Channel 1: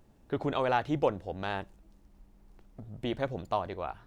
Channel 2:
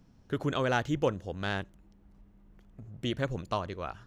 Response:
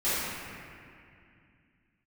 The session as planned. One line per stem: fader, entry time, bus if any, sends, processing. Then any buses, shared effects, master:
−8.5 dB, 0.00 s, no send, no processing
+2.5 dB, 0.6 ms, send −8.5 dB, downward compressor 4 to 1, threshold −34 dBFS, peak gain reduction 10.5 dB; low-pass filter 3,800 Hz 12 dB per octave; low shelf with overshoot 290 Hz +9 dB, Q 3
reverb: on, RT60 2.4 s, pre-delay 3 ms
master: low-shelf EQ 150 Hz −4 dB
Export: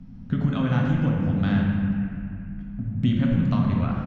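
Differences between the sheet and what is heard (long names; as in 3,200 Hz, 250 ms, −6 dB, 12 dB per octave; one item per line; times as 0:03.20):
stem 1 −8.5 dB → −20.5 dB
master: missing low-shelf EQ 150 Hz −4 dB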